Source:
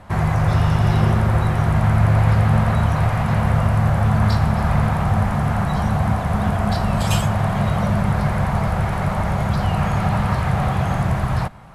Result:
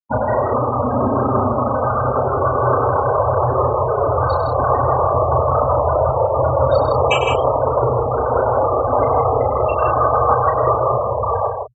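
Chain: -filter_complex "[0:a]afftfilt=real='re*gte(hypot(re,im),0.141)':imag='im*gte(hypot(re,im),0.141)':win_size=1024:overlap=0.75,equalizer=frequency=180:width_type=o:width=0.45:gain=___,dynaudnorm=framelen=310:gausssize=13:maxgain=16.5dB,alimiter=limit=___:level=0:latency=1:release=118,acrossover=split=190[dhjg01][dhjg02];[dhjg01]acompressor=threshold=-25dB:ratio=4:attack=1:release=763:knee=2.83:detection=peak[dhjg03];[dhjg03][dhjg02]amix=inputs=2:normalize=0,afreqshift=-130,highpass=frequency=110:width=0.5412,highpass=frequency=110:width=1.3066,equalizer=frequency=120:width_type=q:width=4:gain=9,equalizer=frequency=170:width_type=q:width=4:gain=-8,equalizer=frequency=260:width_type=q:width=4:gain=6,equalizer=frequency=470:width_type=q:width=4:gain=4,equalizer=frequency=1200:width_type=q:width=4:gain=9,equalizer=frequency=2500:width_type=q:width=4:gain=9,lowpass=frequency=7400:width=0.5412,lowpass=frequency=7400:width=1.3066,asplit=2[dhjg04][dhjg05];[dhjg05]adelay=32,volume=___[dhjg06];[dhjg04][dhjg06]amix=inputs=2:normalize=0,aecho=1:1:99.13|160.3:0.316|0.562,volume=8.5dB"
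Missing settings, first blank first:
14.5, -8.5dB, -5.5dB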